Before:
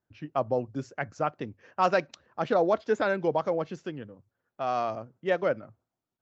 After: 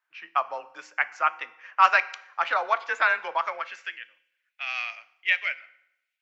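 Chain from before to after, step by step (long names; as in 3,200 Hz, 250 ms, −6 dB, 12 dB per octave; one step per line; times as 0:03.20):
parametric band 2,300 Hz +12 dB 1 octave
feedback delay network reverb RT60 0.81 s, low-frequency decay 1.1×, high-frequency decay 0.85×, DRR 13.5 dB
high-pass filter sweep 1,100 Hz → 2,300 Hz, 0:03.44–0:04.17
frequency shifter +29 Hz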